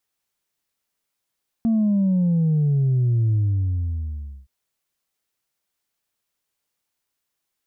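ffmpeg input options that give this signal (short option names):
-f lavfi -i "aevalsrc='0.15*clip((2.82-t)/1.14,0,1)*tanh(1.12*sin(2*PI*230*2.82/log(65/230)*(exp(log(65/230)*t/2.82)-1)))/tanh(1.12)':d=2.82:s=44100"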